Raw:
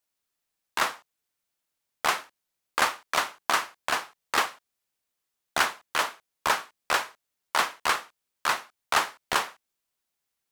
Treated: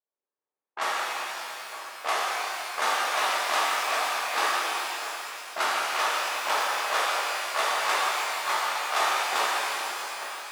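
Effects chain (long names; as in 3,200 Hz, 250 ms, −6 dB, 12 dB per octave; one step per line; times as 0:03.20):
delay that plays each chunk backwards 640 ms, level −12 dB
high-pass filter 410 Hz 12 dB per octave
low-pass that shuts in the quiet parts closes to 930 Hz, open at −21.5 dBFS
formants moved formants −2 semitones
reverb with rising layers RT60 3.2 s, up +12 semitones, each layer −8 dB, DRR −8.5 dB
level −7 dB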